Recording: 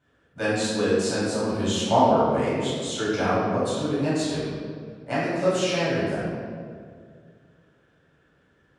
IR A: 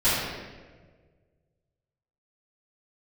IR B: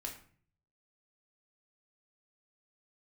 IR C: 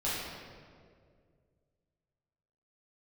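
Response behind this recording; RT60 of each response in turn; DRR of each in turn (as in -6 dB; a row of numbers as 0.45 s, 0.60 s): C; 1.5 s, 0.50 s, 2.1 s; -16.5 dB, -1.0 dB, -10.5 dB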